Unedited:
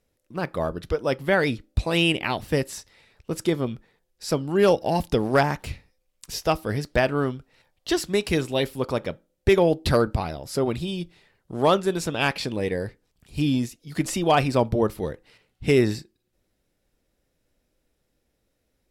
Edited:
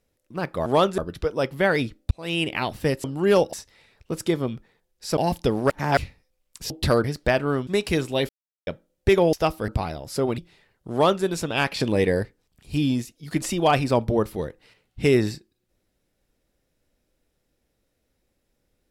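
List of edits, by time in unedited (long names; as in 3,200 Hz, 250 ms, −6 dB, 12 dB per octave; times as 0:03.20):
0:01.79–0:02.22: fade in
0:04.36–0:04.85: move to 0:02.72
0:05.38–0:05.65: reverse
0:06.38–0:06.73: swap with 0:09.73–0:10.07
0:07.36–0:08.07: remove
0:08.69–0:09.07: silence
0:10.77–0:11.02: remove
0:11.56–0:11.88: duplicate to 0:00.66
0:12.44–0:12.87: clip gain +5.5 dB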